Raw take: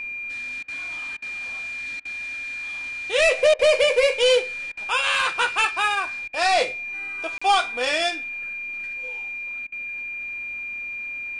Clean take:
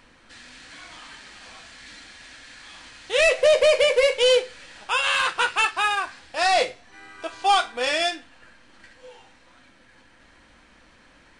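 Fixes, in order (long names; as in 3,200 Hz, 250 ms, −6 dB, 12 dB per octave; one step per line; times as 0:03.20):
notch filter 2,400 Hz, Q 30
repair the gap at 0:07.38, 35 ms
repair the gap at 0:00.63/0:01.17/0:02.00/0:03.54/0:04.72/0:06.28/0:09.67, 50 ms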